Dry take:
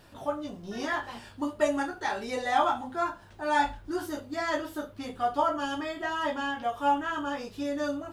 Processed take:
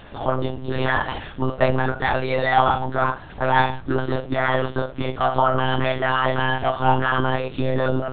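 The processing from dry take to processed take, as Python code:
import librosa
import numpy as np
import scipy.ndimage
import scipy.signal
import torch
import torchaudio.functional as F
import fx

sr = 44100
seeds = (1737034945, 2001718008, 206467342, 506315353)

p1 = fx.hum_notches(x, sr, base_hz=60, count=4)
p2 = fx.over_compress(p1, sr, threshold_db=-33.0, ratio=-0.5)
p3 = p1 + F.gain(torch.from_numpy(p2), -3.0).numpy()
p4 = fx.lpc_monotone(p3, sr, seeds[0], pitch_hz=130.0, order=10)
y = F.gain(torch.from_numpy(p4), 7.0).numpy()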